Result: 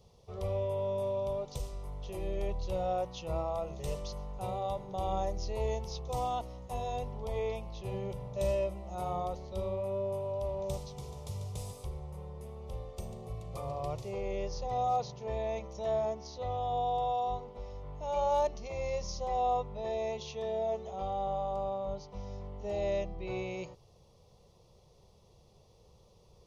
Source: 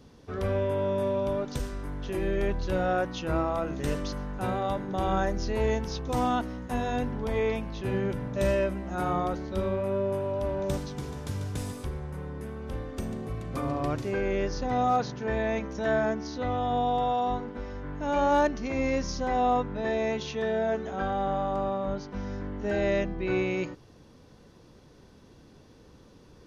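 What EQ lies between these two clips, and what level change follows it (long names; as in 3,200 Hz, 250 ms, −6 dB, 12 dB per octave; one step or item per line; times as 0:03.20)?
phaser with its sweep stopped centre 660 Hz, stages 4
−4.0 dB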